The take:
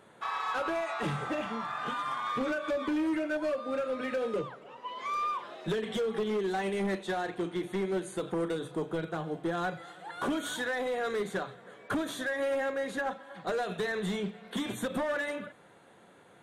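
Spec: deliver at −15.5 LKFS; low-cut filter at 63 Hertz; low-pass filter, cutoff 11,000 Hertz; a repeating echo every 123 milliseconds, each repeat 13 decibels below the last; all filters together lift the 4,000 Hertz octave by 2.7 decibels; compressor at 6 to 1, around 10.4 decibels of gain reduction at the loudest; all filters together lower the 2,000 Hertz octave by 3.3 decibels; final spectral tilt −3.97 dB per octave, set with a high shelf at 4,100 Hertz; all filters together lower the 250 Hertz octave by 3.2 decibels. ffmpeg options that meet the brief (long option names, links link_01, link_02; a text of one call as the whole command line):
ffmpeg -i in.wav -af "highpass=63,lowpass=11000,equalizer=frequency=250:width_type=o:gain=-4.5,equalizer=frequency=2000:width_type=o:gain=-5.5,equalizer=frequency=4000:width_type=o:gain=3.5,highshelf=frequency=4100:gain=3,acompressor=threshold=-41dB:ratio=6,aecho=1:1:123|246|369:0.224|0.0493|0.0108,volume=28dB" out.wav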